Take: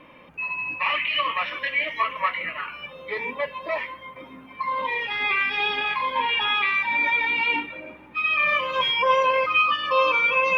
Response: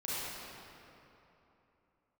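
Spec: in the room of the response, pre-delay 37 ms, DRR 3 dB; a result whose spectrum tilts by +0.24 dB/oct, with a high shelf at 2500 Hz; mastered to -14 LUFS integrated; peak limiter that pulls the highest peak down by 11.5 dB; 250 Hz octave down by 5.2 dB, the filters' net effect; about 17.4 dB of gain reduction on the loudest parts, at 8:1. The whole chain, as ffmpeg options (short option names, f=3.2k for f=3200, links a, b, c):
-filter_complex "[0:a]equalizer=f=250:t=o:g=-6.5,highshelf=f=2.5k:g=-7.5,acompressor=threshold=-36dB:ratio=8,alimiter=level_in=12.5dB:limit=-24dB:level=0:latency=1,volume=-12.5dB,asplit=2[a][b];[1:a]atrim=start_sample=2205,adelay=37[c];[b][c]afir=irnorm=-1:irlink=0,volume=-8dB[d];[a][d]amix=inputs=2:normalize=0,volume=27dB"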